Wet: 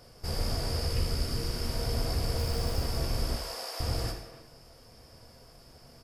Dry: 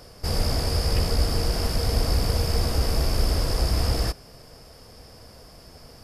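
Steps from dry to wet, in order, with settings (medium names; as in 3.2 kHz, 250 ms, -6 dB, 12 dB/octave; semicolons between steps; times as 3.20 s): 0.87–1.68 s: peaking EQ 750 Hz -6 dB 0.97 oct; 2.38–2.81 s: companded quantiser 6-bit; 3.35–3.80 s: high-pass 540 Hz 24 dB/octave; speakerphone echo 280 ms, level -13 dB; gated-style reverb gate 240 ms falling, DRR 3.5 dB; trim -8.5 dB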